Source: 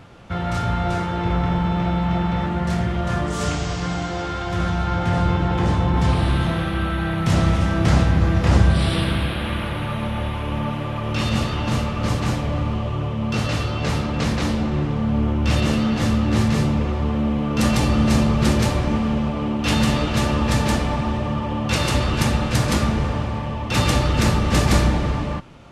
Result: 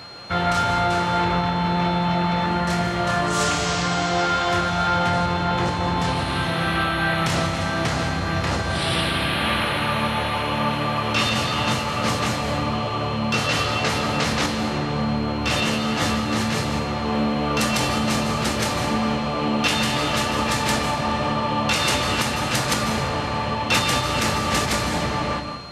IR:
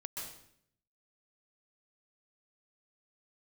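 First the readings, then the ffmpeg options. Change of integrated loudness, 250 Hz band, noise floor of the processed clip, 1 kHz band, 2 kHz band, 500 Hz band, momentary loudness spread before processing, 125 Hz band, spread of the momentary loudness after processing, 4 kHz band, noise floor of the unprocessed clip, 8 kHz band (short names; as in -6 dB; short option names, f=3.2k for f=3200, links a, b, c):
-0.5 dB, -3.5 dB, -25 dBFS, +4.5 dB, +4.5 dB, +1.0 dB, 7 LU, -6.5 dB, 4 LU, +5.0 dB, -26 dBFS, +4.0 dB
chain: -filter_complex "[0:a]asplit=2[a][b];[1:a]atrim=start_sample=2205,adelay=23[c];[b][c]afir=irnorm=-1:irlink=0,volume=-5dB[d];[a][d]amix=inputs=2:normalize=0,alimiter=limit=-13dB:level=0:latency=1:release=445,highpass=63,lowshelf=f=360:g=-12,aeval=exprs='val(0)+0.00447*sin(2*PI*4200*n/s)':c=same,volume=7.5dB"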